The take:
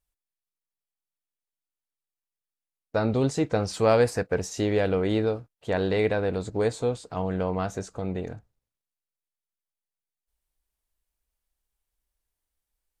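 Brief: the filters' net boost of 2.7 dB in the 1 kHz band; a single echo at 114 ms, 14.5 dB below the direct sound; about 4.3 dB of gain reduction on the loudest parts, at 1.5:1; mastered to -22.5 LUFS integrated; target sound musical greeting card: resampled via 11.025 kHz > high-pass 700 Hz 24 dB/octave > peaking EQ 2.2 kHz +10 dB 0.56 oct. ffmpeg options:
-af "equalizer=f=1000:t=o:g=4.5,acompressor=threshold=0.0501:ratio=1.5,aecho=1:1:114:0.188,aresample=11025,aresample=44100,highpass=f=700:w=0.5412,highpass=f=700:w=1.3066,equalizer=f=2200:t=o:w=0.56:g=10,volume=3.55"

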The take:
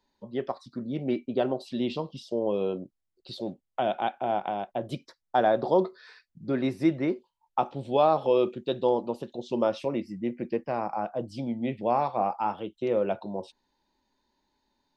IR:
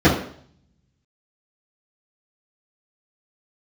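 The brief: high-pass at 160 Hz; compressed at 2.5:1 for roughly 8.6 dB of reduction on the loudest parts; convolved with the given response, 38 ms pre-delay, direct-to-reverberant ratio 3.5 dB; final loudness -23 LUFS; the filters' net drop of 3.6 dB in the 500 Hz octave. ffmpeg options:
-filter_complex "[0:a]highpass=160,equalizer=f=500:t=o:g=-4.5,acompressor=threshold=0.0224:ratio=2.5,asplit=2[s0][s1];[1:a]atrim=start_sample=2205,adelay=38[s2];[s1][s2]afir=irnorm=-1:irlink=0,volume=0.0447[s3];[s0][s3]amix=inputs=2:normalize=0,volume=2.99"

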